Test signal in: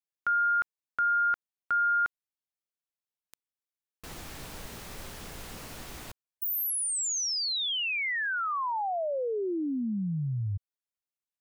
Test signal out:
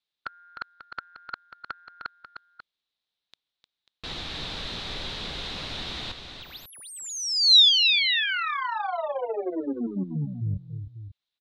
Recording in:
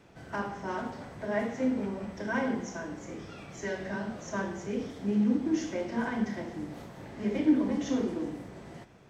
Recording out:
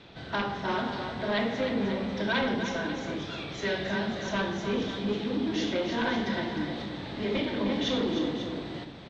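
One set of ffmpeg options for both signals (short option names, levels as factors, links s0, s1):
-filter_complex "[0:a]afftfilt=real='re*lt(hypot(re,im),0.398)':imag='im*lt(hypot(re,im),0.398)':win_size=1024:overlap=0.75,aeval=exprs='0.119*sin(PI/2*2*val(0)/0.119)':c=same,lowpass=f=3800:t=q:w=5.5,asplit=2[s0][s1];[s1]aecho=0:1:305|541:0.398|0.251[s2];[s0][s2]amix=inputs=2:normalize=0,volume=0.562"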